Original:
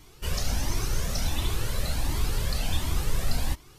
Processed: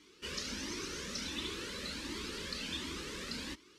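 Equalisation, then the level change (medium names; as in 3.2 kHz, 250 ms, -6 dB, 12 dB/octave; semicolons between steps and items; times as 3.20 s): band-pass 160–5400 Hz; static phaser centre 300 Hz, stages 4; -2.5 dB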